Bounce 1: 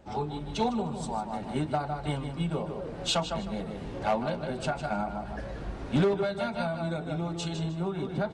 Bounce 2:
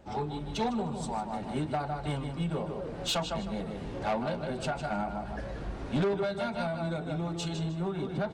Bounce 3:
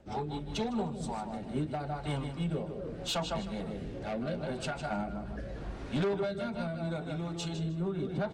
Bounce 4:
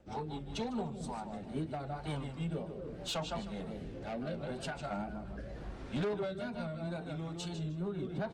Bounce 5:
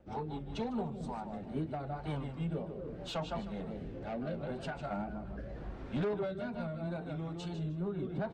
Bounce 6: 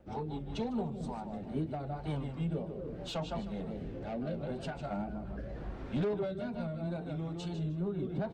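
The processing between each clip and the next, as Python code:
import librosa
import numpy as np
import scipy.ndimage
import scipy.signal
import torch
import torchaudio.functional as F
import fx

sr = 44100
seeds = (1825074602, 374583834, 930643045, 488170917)

y1 = 10.0 ** (-23.5 / 20.0) * np.tanh(x / 10.0 ** (-23.5 / 20.0))
y2 = fx.rotary_switch(y1, sr, hz=5.0, then_hz=0.8, switch_at_s=0.45)
y3 = fx.wow_flutter(y2, sr, seeds[0], rate_hz=2.1, depth_cents=76.0)
y3 = y3 * 10.0 ** (-4.0 / 20.0)
y4 = fx.lowpass(y3, sr, hz=2100.0, slope=6)
y4 = y4 * 10.0 ** (1.0 / 20.0)
y5 = fx.dynamic_eq(y4, sr, hz=1400.0, q=0.76, threshold_db=-51.0, ratio=4.0, max_db=-5)
y5 = y5 * 10.0 ** (2.0 / 20.0)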